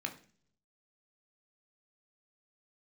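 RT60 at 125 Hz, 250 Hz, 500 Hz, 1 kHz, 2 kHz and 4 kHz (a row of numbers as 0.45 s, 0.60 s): 0.95 s, 0.75 s, 0.55 s, 0.40 s, 0.45 s, 0.50 s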